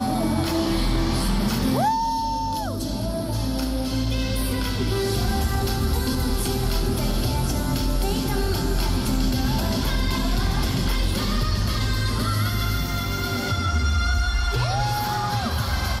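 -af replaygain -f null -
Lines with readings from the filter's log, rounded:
track_gain = +8.3 dB
track_peak = 0.183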